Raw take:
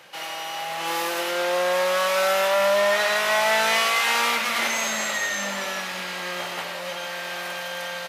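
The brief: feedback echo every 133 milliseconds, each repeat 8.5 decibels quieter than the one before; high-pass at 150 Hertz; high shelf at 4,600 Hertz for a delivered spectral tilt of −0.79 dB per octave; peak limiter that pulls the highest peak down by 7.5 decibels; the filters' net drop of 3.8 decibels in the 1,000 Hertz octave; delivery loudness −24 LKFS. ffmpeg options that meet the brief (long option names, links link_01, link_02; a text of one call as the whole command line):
ffmpeg -i in.wav -af "highpass=150,equalizer=frequency=1000:width_type=o:gain=-5.5,highshelf=frequency=4600:gain=8.5,alimiter=limit=-14.5dB:level=0:latency=1,aecho=1:1:133|266|399|532:0.376|0.143|0.0543|0.0206,volume=-1dB" out.wav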